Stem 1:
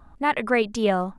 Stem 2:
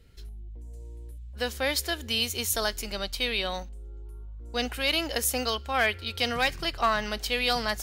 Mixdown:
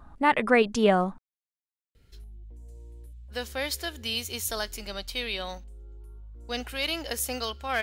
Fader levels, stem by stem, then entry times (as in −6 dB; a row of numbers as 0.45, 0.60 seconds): +0.5, −3.5 decibels; 0.00, 1.95 seconds